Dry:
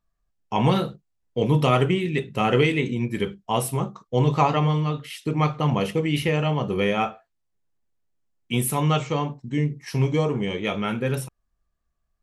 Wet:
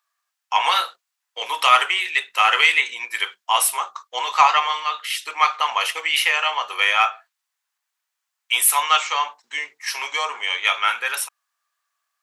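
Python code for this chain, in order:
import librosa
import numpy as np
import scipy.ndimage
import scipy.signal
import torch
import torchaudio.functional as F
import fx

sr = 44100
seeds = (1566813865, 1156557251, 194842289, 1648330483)

p1 = scipy.signal.sosfilt(scipy.signal.butter(4, 1000.0, 'highpass', fs=sr, output='sos'), x)
p2 = 10.0 ** (-19.5 / 20.0) * np.tanh(p1 / 10.0 ** (-19.5 / 20.0))
p3 = p1 + (p2 * 10.0 ** (-6.0 / 20.0))
y = p3 * 10.0 ** (8.5 / 20.0)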